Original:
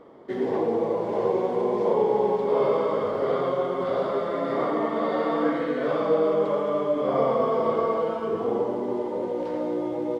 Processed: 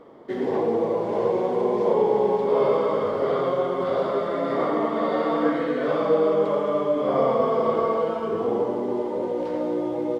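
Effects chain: de-hum 64.57 Hz, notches 35; trim +2 dB

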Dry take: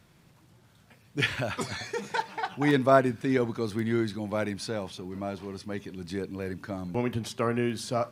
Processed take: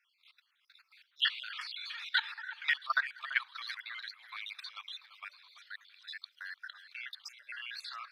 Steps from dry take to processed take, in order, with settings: random holes in the spectrogram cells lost 55%; steep high-pass 1.3 kHz 36 dB/octave; resonant high shelf 5.3 kHz -11 dB, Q 3; level held to a coarse grid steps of 17 dB; echo whose repeats swap between lows and highs 337 ms, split 2.5 kHz, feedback 55%, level -12.5 dB; trim +7.5 dB

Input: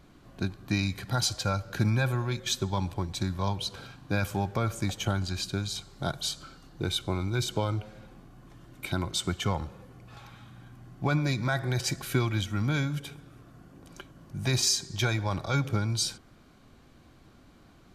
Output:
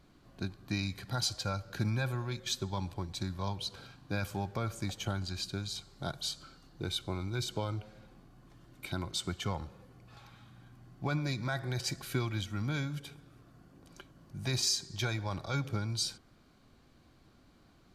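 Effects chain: peaking EQ 4.5 kHz +4 dB 0.4 oct; trim -6.5 dB

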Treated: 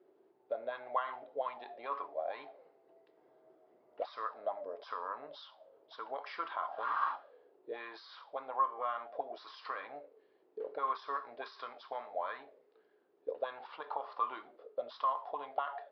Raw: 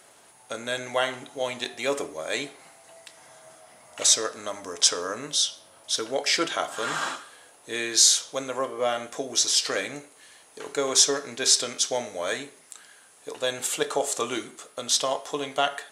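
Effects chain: peak limiter -16.5 dBFS, peak gain reduction 11.5 dB; auto-wah 350–1100 Hz, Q 7.8, up, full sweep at -25 dBFS; resampled via 11.025 kHz; trim +4.5 dB

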